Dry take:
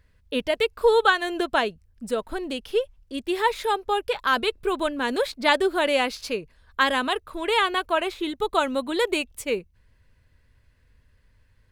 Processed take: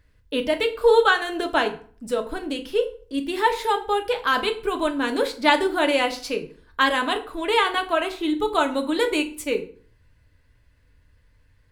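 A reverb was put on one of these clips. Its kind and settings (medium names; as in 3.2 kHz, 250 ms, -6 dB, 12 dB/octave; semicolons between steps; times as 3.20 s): FDN reverb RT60 0.45 s, low-frequency decay 1.2×, high-frequency decay 0.75×, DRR 4.5 dB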